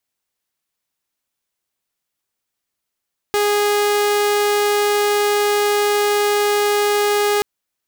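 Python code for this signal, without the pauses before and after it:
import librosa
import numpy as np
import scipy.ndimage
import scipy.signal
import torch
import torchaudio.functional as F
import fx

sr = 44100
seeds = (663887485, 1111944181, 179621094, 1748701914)

y = 10.0 ** (-12.0 / 20.0) * (2.0 * np.mod(413.0 * (np.arange(round(4.08 * sr)) / sr), 1.0) - 1.0)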